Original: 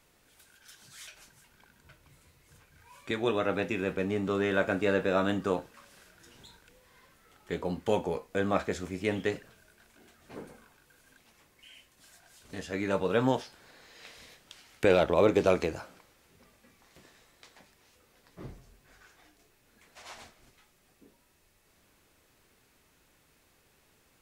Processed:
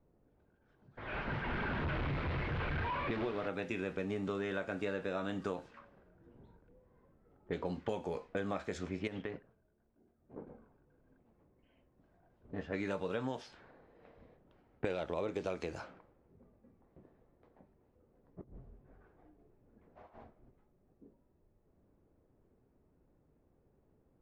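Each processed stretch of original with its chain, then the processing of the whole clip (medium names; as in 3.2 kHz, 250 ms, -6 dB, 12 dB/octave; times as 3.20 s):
0.97–3.48 s: one-bit delta coder 64 kbps, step -25.5 dBFS + distance through air 380 m
9.07–10.47 s: companding laws mixed up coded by A + band-stop 6.9 kHz, Q 14 + compression 16:1, threshold -33 dBFS
18.41–20.21 s: compressor with a negative ratio -50 dBFS, ratio -0.5 + loudspeaker Doppler distortion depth 0.22 ms
whole clip: low-pass 7.8 kHz 12 dB/octave; level-controlled noise filter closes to 480 Hz, open at -27 dBFS; compression 12:1, threshold -33 dBFS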